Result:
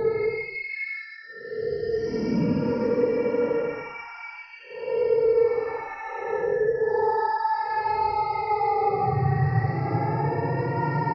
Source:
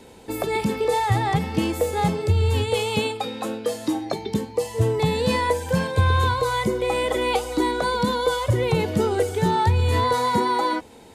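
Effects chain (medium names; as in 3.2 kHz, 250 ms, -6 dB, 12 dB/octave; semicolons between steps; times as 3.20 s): random holes in the spectrogram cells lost 28%; steep low-pass 5.2 kHz 96 dB/octave; peaking EQ 430 Hz +6.5 dB 0.58 oct; comb 7.4 ms, depth 31%; peak limiter -17 dBFS, peak gain reduction 10.5 dB; frequency shift +19 Hz; Butterworth band-stop 3.5 kHz, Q 1.4; vibrato 1.7 Hz 79 cents; Paulstretch 15×, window 0.05 s, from 0.50 s; echo from a far wall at 28 m, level -23 dB; gated-style reverb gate 140 ms rising, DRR 11 dB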